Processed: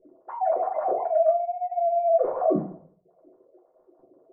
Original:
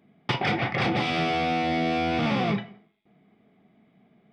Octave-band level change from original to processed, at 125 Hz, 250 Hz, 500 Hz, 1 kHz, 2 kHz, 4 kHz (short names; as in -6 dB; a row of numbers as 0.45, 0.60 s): -14.0 dB, -7.5 dB, +8.5 dB, +1.5 dB, under -25 dB, under -40 dB